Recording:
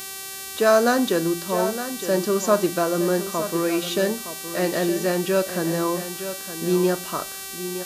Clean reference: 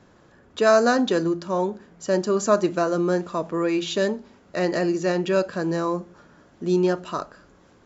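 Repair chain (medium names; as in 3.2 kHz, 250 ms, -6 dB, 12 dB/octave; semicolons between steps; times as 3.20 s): de-click; de-hum 386.9 Hz, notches 37; inverse comb 915 ms -11 dB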